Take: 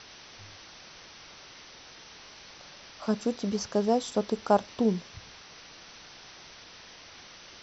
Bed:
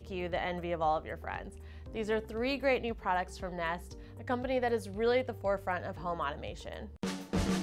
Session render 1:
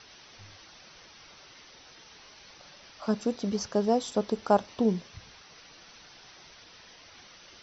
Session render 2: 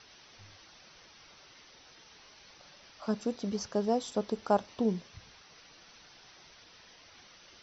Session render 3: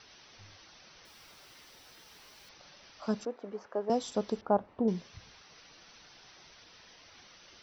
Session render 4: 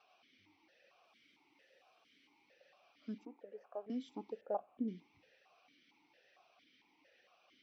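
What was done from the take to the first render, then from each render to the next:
denoiser 6 dB, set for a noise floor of -50 dBFS
gain -4 dB
1.05–2.5 block floating point 3-bit; 3.25–3.9 three-band isolator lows -22 dB, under 320 Hz, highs -24 dB, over 2000 Hz; 4.41–4.88 LPF 1200 Hz
vowel sequencer 4.4 Hz

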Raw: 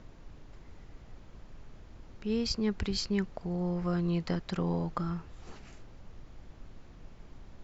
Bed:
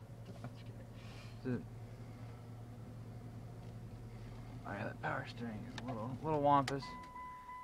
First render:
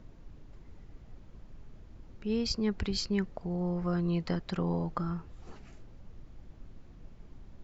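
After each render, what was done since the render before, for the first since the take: denoiser 6 dB, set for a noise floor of -53 dBFS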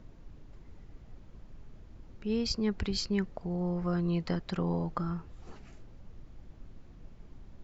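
nothing audible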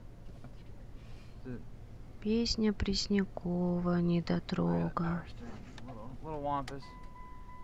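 add bed -4.5 dB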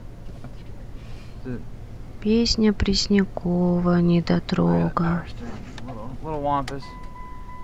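gain +11.5 dB

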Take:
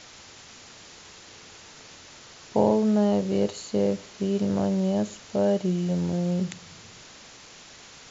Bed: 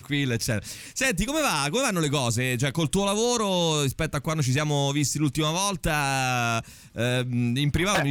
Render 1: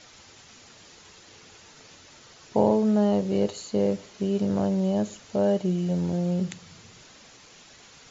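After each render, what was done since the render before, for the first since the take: denoiser 6 dB, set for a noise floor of -48 dBFS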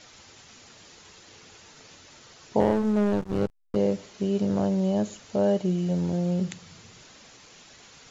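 2.6–3.76 backlash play -20.5 dBFS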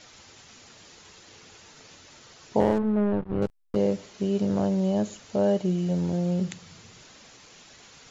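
2.78–3.42 air absorption 470 m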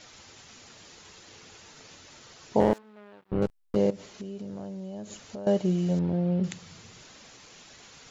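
2.73–3.32 differentiator; 3.9–5.47 compressor 8:1, threshold -35 dBFS; 5.99–6.44 air absorption 330 m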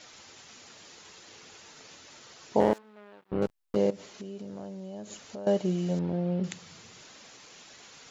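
low shelf 120 Hz -11.5 dB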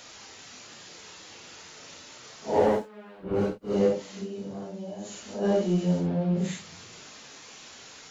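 phase scrambler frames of 0.2 s; in parallel at -4 dB: soft clip -27 dBFS, distortion -9 dB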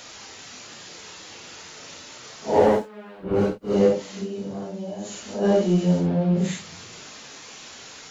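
gain +5 dB

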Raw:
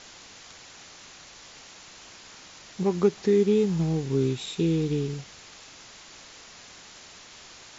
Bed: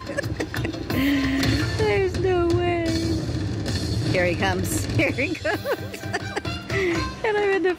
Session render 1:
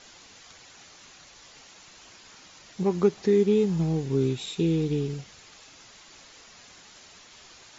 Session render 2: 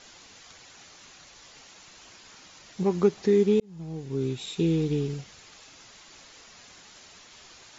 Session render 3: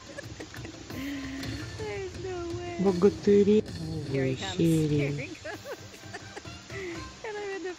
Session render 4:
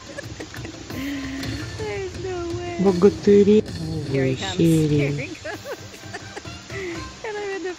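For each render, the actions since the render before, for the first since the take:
denoiser 6 dB, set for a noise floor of -49 dBFS
3.6–4.62 fade in
add bed -14.5 dB
gain +7 dB

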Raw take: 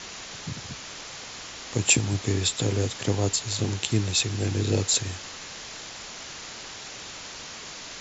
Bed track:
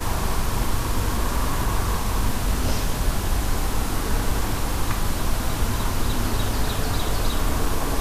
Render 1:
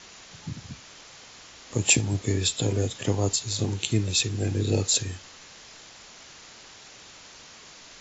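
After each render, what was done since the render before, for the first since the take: noise print and reduce 8 dB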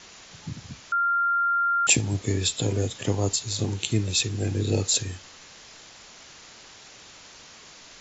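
0.92–1.87 bleep 1390 Hz -20 dBFS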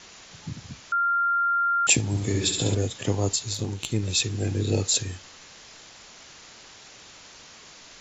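2.09–2.75 flutter echo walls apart 11.8 m, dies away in 0.8 s; 3.54–4.03 tube stage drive 13 dB, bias 0.6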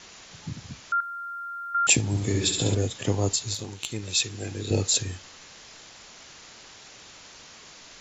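1–1.75 spectral compressor 4:1; 3.55–4.71 low shelf 450 Hz -9.5 dB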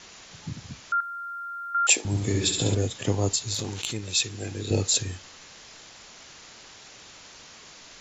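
0.94–2.05 HPF 380 Hz 24 dB/oct; 3.4–3.94 sustainer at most 25 dB/s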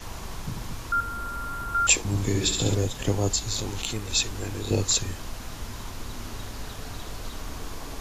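add bed track -13.5 dB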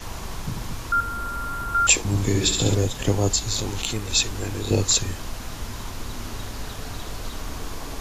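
gain +3.5 dB; limiter -3 dBFS, peak gain reduction 1.5 dB

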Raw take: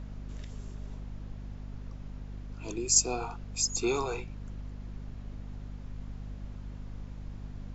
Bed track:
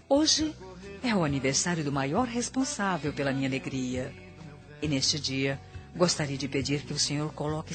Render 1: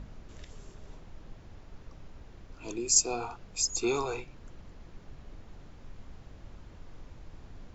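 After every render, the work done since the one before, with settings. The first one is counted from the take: de-hum 50 Hz, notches 5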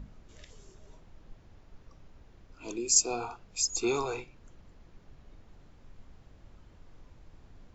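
noise print and reduce 6 dB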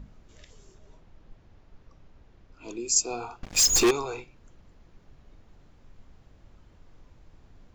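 0.78–2.79 air absorption 51 m; 3.43–3.91 sample leveller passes 5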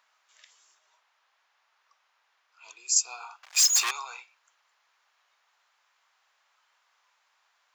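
HPF 960 Hz 24 dB/oct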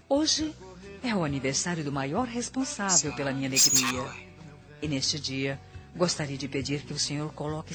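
add bed track -1.5 dB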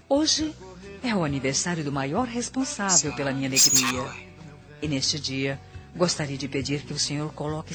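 gain +3 dB

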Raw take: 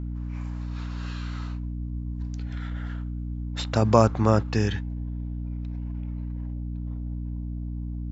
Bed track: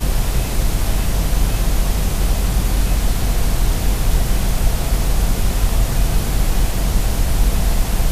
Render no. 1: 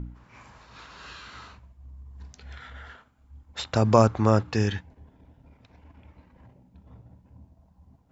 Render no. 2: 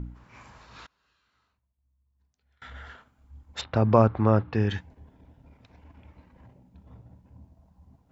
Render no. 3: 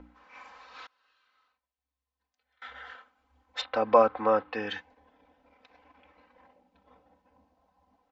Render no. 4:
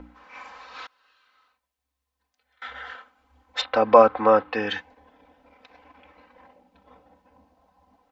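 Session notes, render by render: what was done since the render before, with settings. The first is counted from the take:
de-hum 60 Hz, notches 5
0.86–2.62 flipped gate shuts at -47 dBFS, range -28 dB; 3.61–4.7 air absorption 340 m
three-band isolator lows -23 dB, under 400 Hz, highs -18 dB, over 5200 Hz; comb 3.9 ms, depth 82%
gain +7 dB; limiter -1 dBFS, peak gain reduction 1 dB

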